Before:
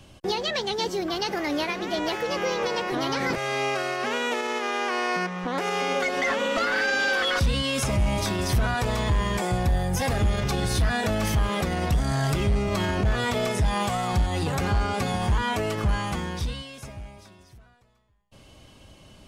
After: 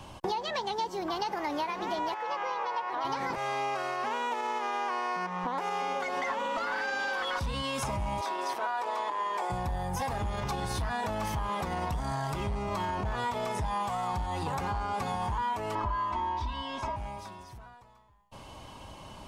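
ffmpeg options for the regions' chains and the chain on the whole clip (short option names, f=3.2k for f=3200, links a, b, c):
-filter_complex "[0:a]asettb=1/sr,asplit=3[a][b][c];[a]atrim=end=2.144[d];[b]atrim=start=2.14:end=3.05,asetpts=PTS-STARTPTS,afade=t=in:d=0.004:c=qsin,afade=t=out:st=0.906:d=0.004:c=qsin,highpass=860,aemphasis=mode=reproduction:type=riaa[e];[c]atrim=start=3.046[f];[d][e]acrossfade=d=0.004:c1=hsin:c2=qsin[g];[g][f]acrossfade=d=0.004:c1=qsin:c2=hsin,asettb=1/sr,asplit=3[h][i][j];[h]atrim=end=8.214[k];[i]atrim=start=8.21:end=9.5,asetpts=PTS-STARTPTS,afade=t=in:d=0.004:c=qsin,afade=t=out:st=1.286:d=0.004:c=qsin,highpass=f=350:w=0.5412,highpass=f=350:w=1.3066,highshelf=f=6.4k:g=-9[l];[j]atrim=start=9.496[m];[k][l]acrossfade=d=0.004:c1=hsin:c2=qsin[n];[n][m]acrossfade=d=0.004:c1=qsin:c2=hsin,asettb=1/sr,asplit=3[o][p][q];[o]atrim=end=15.754[r];[p]atrim=start=15.75:end=16.96,asetpts=PTS-STARTPTS,afade=t=in:d=0.004:c=qsin,afade=t=out:st=1.206:d=0.004:c=qsin,lowpass=4.4k,equalizer=f=940:t=o:w=0.46:g=7,aecho=1:1:3.1:0.95,atrim=end_sample=53361[s];[q]atrim=start=16.956[t];[r][s]acrossfade=d=0.004:c1=hsin:c2=qsin[u];[u][t]acrossfade=d=0.004:c1=qsin:c2=hsin,equalizer=f=940:t=o:w=0.64:g=14.5,acompressor=threshold=-32dB:ratio=6,volume=1.5dB"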